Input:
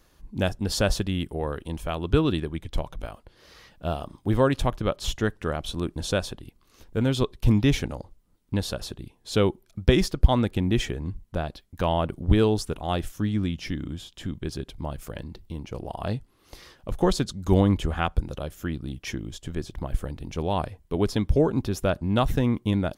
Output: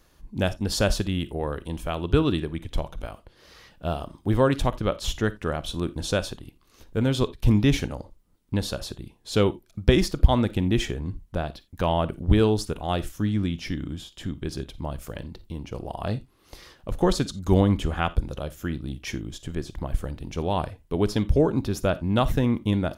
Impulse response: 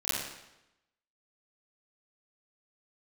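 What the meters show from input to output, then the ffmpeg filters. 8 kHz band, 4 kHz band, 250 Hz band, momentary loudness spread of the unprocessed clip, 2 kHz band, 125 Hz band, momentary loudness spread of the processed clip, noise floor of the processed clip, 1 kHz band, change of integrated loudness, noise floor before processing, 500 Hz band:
+0.5 dB, +0.5 dB, +0.5 dB, 14 LU, +0.5 dB, +0.5 dB, 14 LU, -60 dBFS, +0.5 dB, +0.5 dB, -62 dBFS, +0.5 dB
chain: -filter_complex "[0:a]asplit=2[s0][s1];[1:a]atrim=start_sample=2205,atrim=end_sample=3969[s2];[s1][s2]afir=irnorm=-1:irlink=0,volume=0.0891[s3];[s0][s3]amix=inputs=2:normalize=0"

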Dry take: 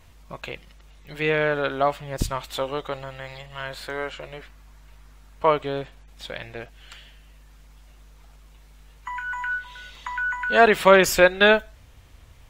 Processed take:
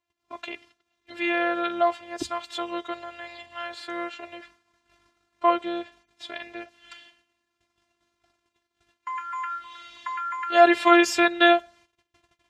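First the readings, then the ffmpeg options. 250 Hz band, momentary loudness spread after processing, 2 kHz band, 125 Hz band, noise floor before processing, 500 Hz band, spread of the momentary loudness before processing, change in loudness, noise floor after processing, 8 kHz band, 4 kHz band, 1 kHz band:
+3.0 dB, 22 LU, -4.0 dB, under -20 dB, -50 dBFS, -4.0 dB, 23 LU, -1.5 dB, -80 dBFS, -5.0 dB, -1.5 dB, +1.0 dB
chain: -af "afftfilt=real='hypot(re,im)*cos(PI*b)':imag='0':win_size=512:overlap=0.75,agate=range=0.0562:threshold=0.00355:ratio=16:detection=peak,highpass=150,lowpass=6700,volume=1.33"

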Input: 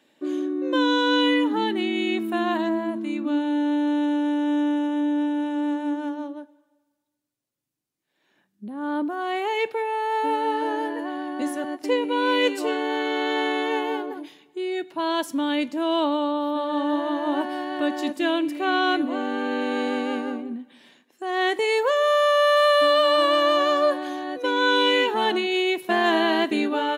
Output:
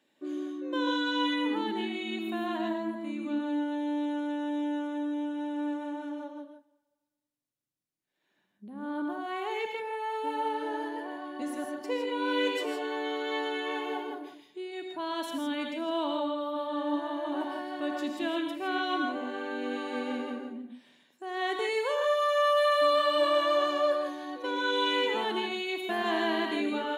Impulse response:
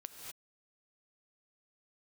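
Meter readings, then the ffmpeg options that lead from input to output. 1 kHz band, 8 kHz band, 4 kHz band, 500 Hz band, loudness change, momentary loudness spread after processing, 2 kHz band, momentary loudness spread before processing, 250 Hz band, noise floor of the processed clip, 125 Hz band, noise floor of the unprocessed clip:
-7.5 dB, -7.5 dB, -7.5 dB, -7.0 dB, -7.5 dB, 12 LU, -8.0 dB, 10 LU, -8.5 dB, -80 dBFS, no reading, -73 dBFS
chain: -filter_complex "[1:a]atrim=start_sample=2205,asetrate=66150,aresample=44100[s0];[0:a][s0]afir=irnorm=-1:irlink=0"

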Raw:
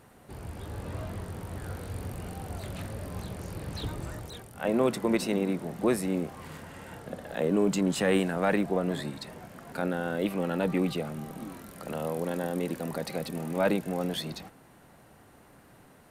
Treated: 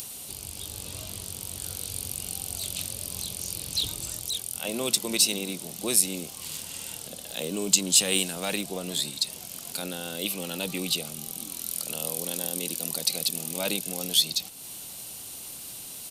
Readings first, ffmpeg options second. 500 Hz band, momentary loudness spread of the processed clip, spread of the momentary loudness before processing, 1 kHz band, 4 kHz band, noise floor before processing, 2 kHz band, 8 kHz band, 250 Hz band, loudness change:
-6.5 dB, 14 LU, 16 LU, -6.5 dB, +14.5 dB, -56 dBFS, 0.0 dB, +19.0 dB, -6.5 dB, +3.0 dB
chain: -af "aresample=32000,aresample=44100,acompressor=mode=upward:threshold=0.0141:ratio=2.5,aexciter=amount=14.6:drive=3.6:freq=2700,volume=0.473"

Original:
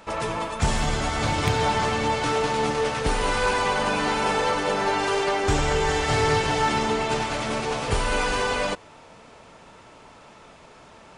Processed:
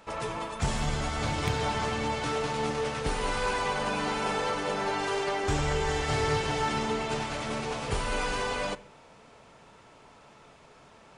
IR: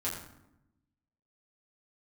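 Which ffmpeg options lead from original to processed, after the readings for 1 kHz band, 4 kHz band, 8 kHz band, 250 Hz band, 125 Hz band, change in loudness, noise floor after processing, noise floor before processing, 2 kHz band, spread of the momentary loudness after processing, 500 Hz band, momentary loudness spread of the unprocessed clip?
-7.0 dB, -6.0 dB, -6.0 dB, -5.5 dB, -4.5 dB, -6.0 dB, -55 dBFS, -49 dBFS, -6.5 dB, 5 LU, -6.5 dB, 5 LU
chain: -filter_complex "[0:a]asplit=2[s0][s1];[1:a]atrim=start_sample=2205,asetrate=70560,aresample=44100[s2];[s1][s2]afir=irnorm=-1:irlink=0,volume=0.224[s3];[s0][s3]amix=inputs=2:normalize=0,volume=0.447"

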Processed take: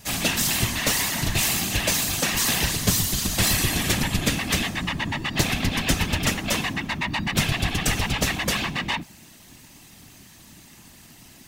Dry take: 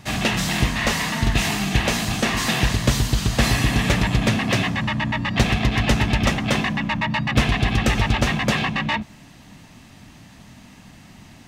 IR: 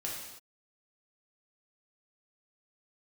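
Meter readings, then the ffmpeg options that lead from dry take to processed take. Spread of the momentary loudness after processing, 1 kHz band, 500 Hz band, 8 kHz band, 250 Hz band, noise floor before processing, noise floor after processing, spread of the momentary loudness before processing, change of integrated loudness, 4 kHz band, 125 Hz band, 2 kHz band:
6 LU, -5.0 dB, -5.0 dB, +5.5 dB, -5.5 dB, -47 dBFS, -49 dBFS, 3 LU, -2.0 dB, 0.0 dB, -6.0 dB, -3.0 dB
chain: -af "afftfilt=real='hypot(re,im)*cos(2*PI*random(0))':imag='hypot(re,im)*sin(2*PI*random(1))':win_size=512:overlap=0.75,aemphasis=mode=production:type=75fm,volume=1.12"

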